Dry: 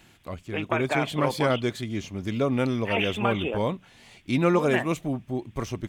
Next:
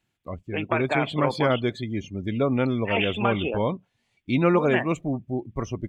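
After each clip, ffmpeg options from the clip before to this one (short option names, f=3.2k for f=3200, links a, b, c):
-af "afftdn=nr=23:nf=-39,volume=1.5dB"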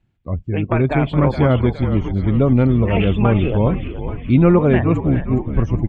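-filter_complex "[0:a]aemphasis=mode=reproduction:type=riaa,asplit=2[a][b];[b]asplit=7[c][d][e][f][g][h][i];[c]adelay=416,afreqshift=-69,volume=-10dB[j];[d]adelay=832,afreqshift=-138,volume=-14.7dB[k];[e]adelay=1248,afreqshift=-207,volume=-19.5dB[l];[f]adelay=1664,afreqshift=-276,volume=-24.2dB[m];[g]adelay=2080,afreqshift=-345,volume=-28.9dB[n];[h]adelay=2496,afreqshift=-414,volume=-33.7dB[o];[i]adelay=2912,afreqshift=-483,volume=-38.4dB[p];[j][k][l][m][n][o][p]amix=inputs=7:normalize=0[q];[a][q]amix=inputs=2:normalize=0,volume=2dB"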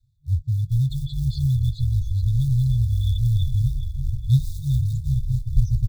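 -filter_complex "[0:a]adynamicequalizer=threshold=0.0447:dfrequency=140:dqfactor=1:tfrequency=140:tqfactor=1:attack=5:release=100:ratio=0.375:range=2.5:mode=cutabove:tftype=bell,asplit=2[a][b];[b]acrusher=bits=5:mode=log:mix=0:aa=0.000001,volume=-11dB[c];[a][c]amix=inputs=2:normalize=0,afftfilt=real='re*(1-between(b*sr/4096,150,3400))':imag='im*(1-between(b*sr/4096,150,3400))':win_size=4096:overlap=0.75"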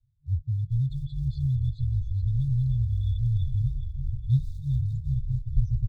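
-af "lowpass=f=1.4k:p=1,volume=-5dB"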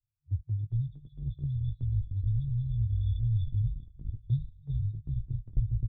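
-filter_complex "[0:a]agate=range=-15dB:threshold=-27dB:ratio=16:detection=peak,asplit=2[a][b];[b]adelay=19,volume=-9dB[c];[a][c]amix=inputs=2:normalize=0,aresample=8000,aresample=44100,volume=-4.5dB"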